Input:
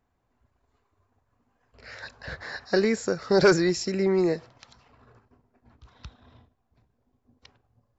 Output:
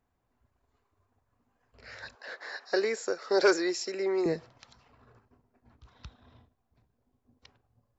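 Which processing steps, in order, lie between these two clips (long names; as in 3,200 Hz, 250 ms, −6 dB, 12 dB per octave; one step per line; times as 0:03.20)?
0:02.15–0:04.26: high-pass filter 340 Hz 24 dB per octave
level −3.5 dB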